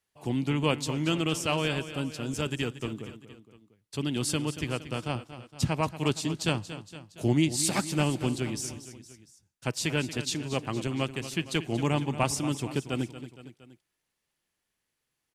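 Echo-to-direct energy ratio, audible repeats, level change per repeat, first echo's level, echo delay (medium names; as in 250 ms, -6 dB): -11.5 dB, 3, -4.5 dB, -13.0 dB, 232 ms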